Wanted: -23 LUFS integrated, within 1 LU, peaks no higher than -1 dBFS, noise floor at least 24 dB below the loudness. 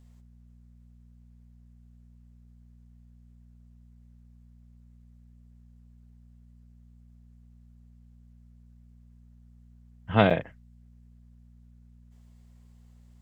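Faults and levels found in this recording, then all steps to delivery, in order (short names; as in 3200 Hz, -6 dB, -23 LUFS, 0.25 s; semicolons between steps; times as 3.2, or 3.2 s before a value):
dropouts 1; longest dropout 6.5 ms; hum 60 Hz; harmonics up to 240 Hz; hum level -51 dBFS; loudness -24.5 LUFS; peak -4.5 dBFS; loudness target -23.0 LUFS
-> interpolate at 10.3, 6.5 ms; de-hum 60 Hz, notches 4; gain +1.5 dB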